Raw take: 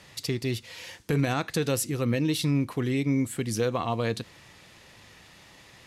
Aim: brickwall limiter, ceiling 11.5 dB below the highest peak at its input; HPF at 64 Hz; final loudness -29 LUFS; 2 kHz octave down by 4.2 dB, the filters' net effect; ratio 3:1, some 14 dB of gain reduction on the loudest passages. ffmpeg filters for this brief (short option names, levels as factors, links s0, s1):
-af "highpass=64,equalizer=f=2000:t=o:g=-5.5,acompressor=threshold=0.00891:ratio=3,volume=5.62,alimiter=limit=0.133:level=0:latency=1"